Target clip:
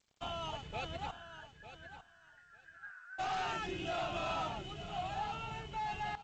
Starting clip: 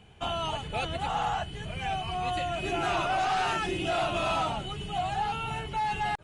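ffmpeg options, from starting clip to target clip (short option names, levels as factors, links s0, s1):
-filter_complex "[0:a]aeval=exprs='sgn(val(0))*max(abs(val(0))-0.00335,0)':c=same,asplit=3[s0][s1][s2];[s0]afade=t=out:st=1.1:d=0.02[s3];[s1]asuperpass=centerf=1600:order=4:qfactor=6.7,afade=t=in:st=1.1:d=0.02,afade=t=out:st=3.18:d=0.02[s4];[s2]afade=t=in:st=3.18:d=0.02[s5];[s3][s4][s5]amix=inputs=3:normalize=0,aecho=1:1:900|1800:0.237|0.0356,volume=0.376" -ar 16000 -c:a g722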